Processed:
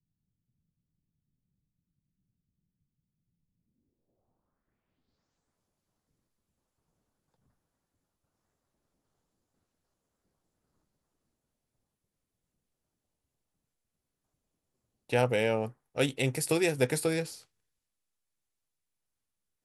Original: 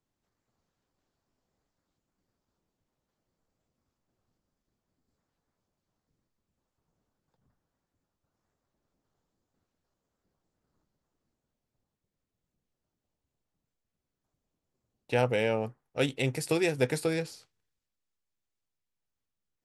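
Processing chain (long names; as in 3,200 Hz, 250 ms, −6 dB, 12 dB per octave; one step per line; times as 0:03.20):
low-pass filter sweep 160 Hz → 11,000 Hz, 0:03.52–0:05.58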